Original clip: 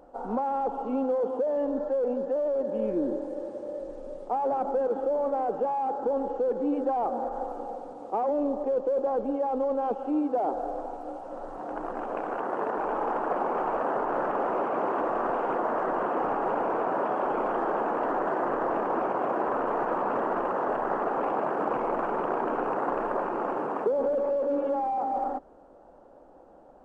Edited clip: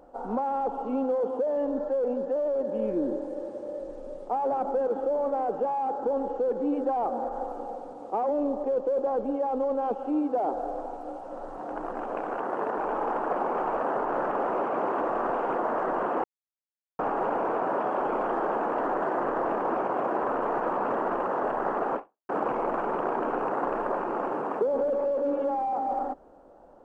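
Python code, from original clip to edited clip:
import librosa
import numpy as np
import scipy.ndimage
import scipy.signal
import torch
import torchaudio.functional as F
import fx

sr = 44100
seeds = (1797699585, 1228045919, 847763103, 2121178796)

y = fx.edit(x, sr, fx.insert_silence(at_s=16.24, length_s=0.75),
    fx.fade_out_span(start_s=21.21, length_s=0.33, curve='exp'), tone=tone)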